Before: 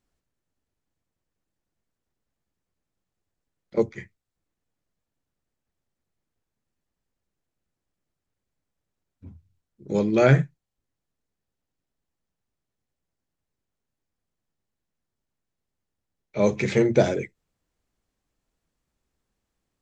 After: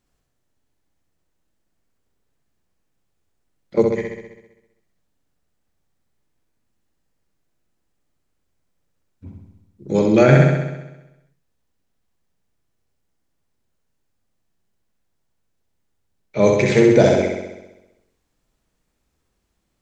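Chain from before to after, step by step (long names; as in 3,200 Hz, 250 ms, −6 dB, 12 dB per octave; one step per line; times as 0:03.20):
on a send: flutter between parallel walls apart 11.2 metres, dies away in 1 s
on the sum: boost into a limiter +6.5 dB
level −1 dB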